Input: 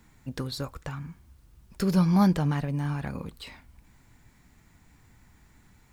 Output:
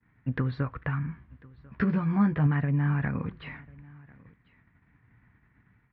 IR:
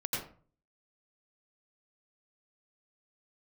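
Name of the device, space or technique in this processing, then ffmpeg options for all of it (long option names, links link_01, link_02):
bass amplifier: -filter_complex "[0:a]agate=range=-33dB:threshold=-49dB:ratio=3:detection=peak,lowpass=6200,acompressor=threshold=-28dB:ratio=4,highpass=61,equalizer=frequency=73:width_type=q:width=4:gain=-5,equalizer=frequency=120:width_type=q:width=4:gain=5,equalizer=frequency=360:width_type=q:width=4:gain=-4,equalizer=frequency=560:width_type=q:width=4:gain=-6,equalizer=frequency=820:width_type=q:width=4:gain=-6,equalizer=frequency=1800:width_type=q:width=4:gain=5,lowpass=frequency=2300:width=0.5412,lowpass=frequency=2300:width=1.3066,asettb=1/sr,asplit=3[link_01][link_02][link_03];[link_01]atrim=end=1.064[link_04];[link_02]atrim=start=1.06:end=2.47,asetpts=PTS-STARTPTS,afade=type=in:duration=0.004:curve=qsin,afade=type=out:start_time=1.406:duration=0.004:curve=qsin,asplit=2[link_05][link_06];[link_06]adelay=14,volume=-4dB[link_07];[link_05][link_07]amix=inputs=2:normalize=0,atrim=end_sample=62181[link_08];[link_03]atrim=start=2.466[link_09];[link_04][link_08]acrossfade=duration=0.004:curve1=hsin:curve2=qsin[link_10];[link_10][link_09]acrossfade=duration=0.004:curve1=qsin:curve2=hsin,aecho=1:1:1044:0.0631,volume=5.5dB"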